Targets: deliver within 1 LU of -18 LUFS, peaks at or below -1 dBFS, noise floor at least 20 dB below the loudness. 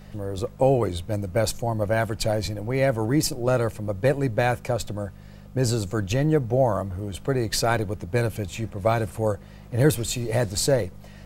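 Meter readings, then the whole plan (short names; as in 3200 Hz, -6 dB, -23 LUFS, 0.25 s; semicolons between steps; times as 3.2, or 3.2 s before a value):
hum 50 Hz; harmonics up to 200 Hz; hum level -45 dBFS; loudness -25.0 LUFS; peak -6.0 dBFS; loudness target -18.0 LUFS
-> de-hum 50 Hz, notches 4; gain +7 dB; limiter -1 dBFS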